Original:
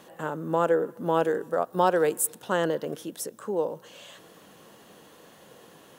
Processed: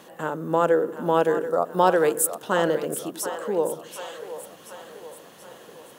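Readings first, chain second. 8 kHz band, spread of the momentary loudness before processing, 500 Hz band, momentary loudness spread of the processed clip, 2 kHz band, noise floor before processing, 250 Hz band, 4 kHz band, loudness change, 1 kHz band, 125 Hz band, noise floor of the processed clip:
+4.0 dB, 12 LU, +3.5 dB, 21 LU, +4.0 dB, -53 dBFS, +3.0 dB, +4.0 dB, +3.5 dB, +3.5 dB, +2.0 dB, -48 dBFS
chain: spectral gain 1.5–1.73, 1400–3600 Hz -11 dB; low shelf 120 Hz -5.5 dB; on a send: split-band echo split 430 Hz, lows 87 ms, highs 0.731 s, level -11 dB; on the sum: gain +3.5 dB

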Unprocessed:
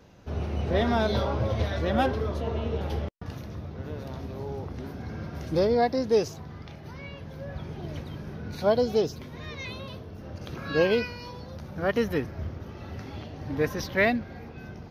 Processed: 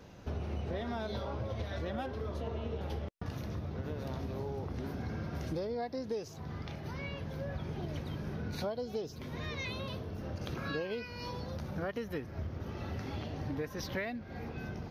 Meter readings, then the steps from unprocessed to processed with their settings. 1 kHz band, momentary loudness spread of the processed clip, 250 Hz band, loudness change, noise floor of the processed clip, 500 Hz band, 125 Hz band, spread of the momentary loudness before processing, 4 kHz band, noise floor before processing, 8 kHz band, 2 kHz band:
-11.0 dB, 4 LU, -8.5 dB, -10.5 dB, -47 dBFS, -12.0 dB, -6.0 dB, 16 LU, -8.0 dB, -43 dBFS, -7.0 dB, -10.5 dB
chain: compressor 10:1, threshold -35 dBFS, peak gain reduction 17.5 dB; gain +1 dB

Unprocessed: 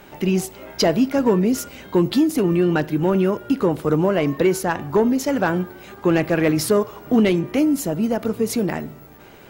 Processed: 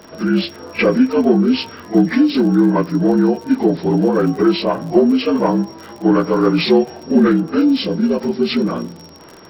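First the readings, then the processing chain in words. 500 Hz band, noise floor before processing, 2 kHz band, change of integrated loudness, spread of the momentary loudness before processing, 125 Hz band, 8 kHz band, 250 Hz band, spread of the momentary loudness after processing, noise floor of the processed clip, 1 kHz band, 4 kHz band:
+3.0 dB, -45 dBFS, +2.0 dB, +4.5 dB, 6 LU, +2.0 dB, under -10 dB, +5.5 dB, 6 LU, -40 dBFS, +3.0 dB, +6.0 dB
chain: inharmonic rescaling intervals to 75%; reverse echo 42 ms -17.5 dB; crackle 62/s -33 dBFS; gain +5.5 dB

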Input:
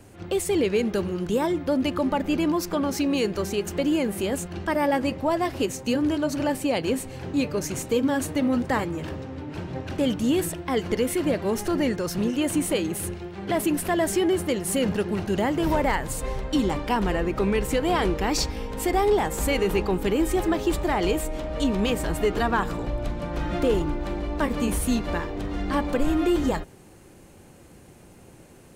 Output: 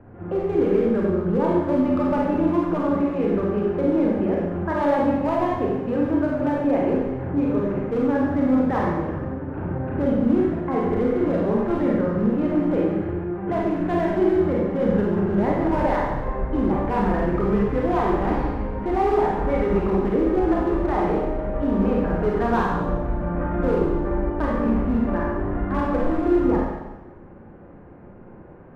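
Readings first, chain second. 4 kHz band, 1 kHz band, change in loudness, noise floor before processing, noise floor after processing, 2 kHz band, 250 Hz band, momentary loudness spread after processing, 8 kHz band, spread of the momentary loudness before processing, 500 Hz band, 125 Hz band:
under -10 dB, +3.0 dB, +3.0 dB, -49 dBFS, -43 dBFS, -2.0 dB, +4.0 dB, 6 LU, under -25 dB, 7 LU, +3.5 dB, +4.5 dB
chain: LPF 1600 Hz 24 dB/oct; in parallel at +1 dB: limiter -22 dBFS, peak gain reduction 9 dB; on the sum: hard clip -14 dBFS, distortion -22 dB; Schroeder reverb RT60 1.1 s, combs from 31 ms, DRR -3.5 dB; gain -5.5 dB

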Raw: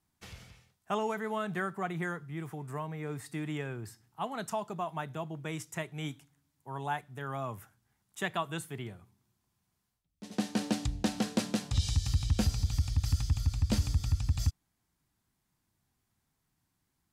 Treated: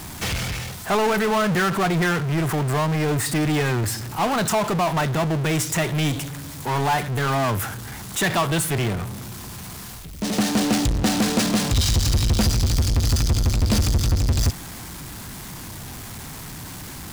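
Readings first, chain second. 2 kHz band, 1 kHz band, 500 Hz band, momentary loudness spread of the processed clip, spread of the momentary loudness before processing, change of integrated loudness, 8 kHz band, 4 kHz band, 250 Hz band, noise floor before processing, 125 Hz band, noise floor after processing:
+15.0 dB, +13.5 dB, +14.0 dB, 15 LU, 13 LU, +12.5 dB, +17.0 dB, +15.5 dB, +13.0 dB, -81 dBFS, +11.5 dB, -36 dBFS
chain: power-law curve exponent 0.35; gain +4.5 dB

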